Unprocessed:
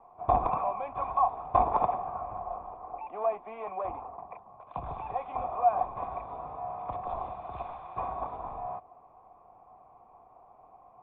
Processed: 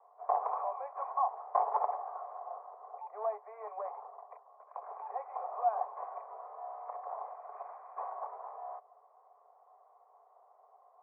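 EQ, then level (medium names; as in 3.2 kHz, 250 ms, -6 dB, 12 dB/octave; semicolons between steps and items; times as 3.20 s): elliptic low-pass 2 kHz, stop band 40 dB; dynamic bell 850 Hz, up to +6 dB, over -44 dBFS, Q 7.5; rippled Chebyshev high-pass 410 Hz, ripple 3 dB; -4.5 dB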